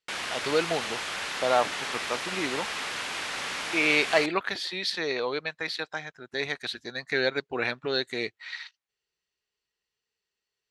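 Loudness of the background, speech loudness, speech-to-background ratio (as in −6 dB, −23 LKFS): −31.5 LKFS, −29.0 LKFS, 2.5 dB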